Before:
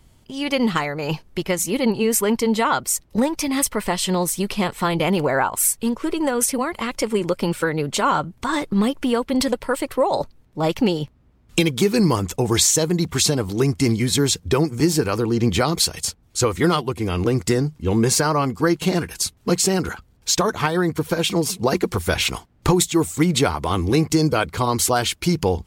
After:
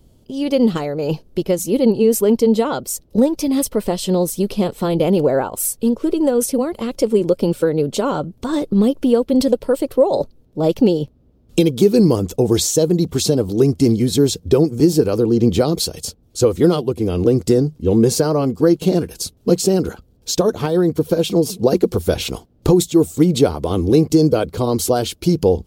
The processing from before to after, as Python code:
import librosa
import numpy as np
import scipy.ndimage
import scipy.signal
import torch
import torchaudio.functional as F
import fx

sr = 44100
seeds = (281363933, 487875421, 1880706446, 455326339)

y = fx.graphic_eq(x, sr, hz=(250, 500, 1000, 2000, 8000), db=(3, 7, -7, -12, -5))
y = F.gain(torch.from_numpy(y), 1.5).numpy()